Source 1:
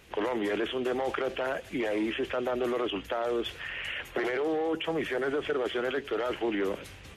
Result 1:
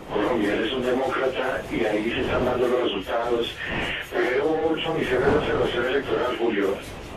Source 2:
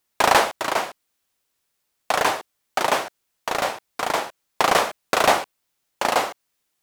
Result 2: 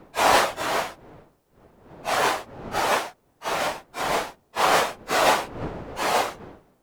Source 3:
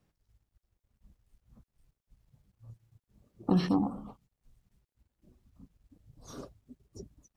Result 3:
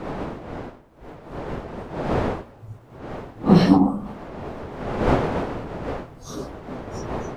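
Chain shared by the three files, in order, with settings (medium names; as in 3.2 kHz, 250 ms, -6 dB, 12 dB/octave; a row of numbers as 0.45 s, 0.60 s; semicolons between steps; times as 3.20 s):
phase randomisation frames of 100 ms; wind noise 620 Hz -41 dBFS; normalise loudness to -24 LUFS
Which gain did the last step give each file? +7.0 dB, -1.5 dB, +12.0 dB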